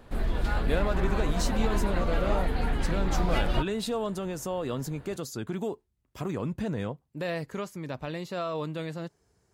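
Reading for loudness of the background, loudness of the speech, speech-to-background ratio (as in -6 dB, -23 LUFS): -30.5 LUFS, -33.5 LUFS, -3.0 dB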